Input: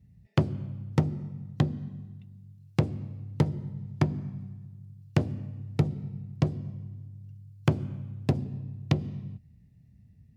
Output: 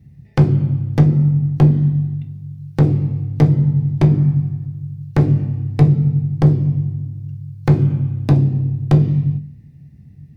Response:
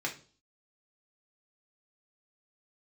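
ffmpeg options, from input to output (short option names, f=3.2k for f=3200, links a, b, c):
-filter_complex "[0:a]aeval=exprs='(tanh(15.8*val(0)+0.35)-tanh(0.35))/15.8':c=same,asplit=2[a][b];[1:a]atrim=start_sample=2205,lowshelf=f=410:g=10.5[c];[b][c]afir=irnorm=-1:irlink=0,volume=-4.5dB[d];[a][d]amix=inputs=2:normalize=0,volume=8dB"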